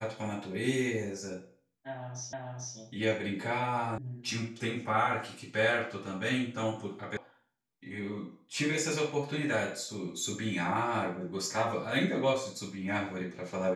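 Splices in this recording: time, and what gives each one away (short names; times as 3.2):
2.33 repeat of the last 0.44 s
3.98 sound cut off
7.17 sound cut off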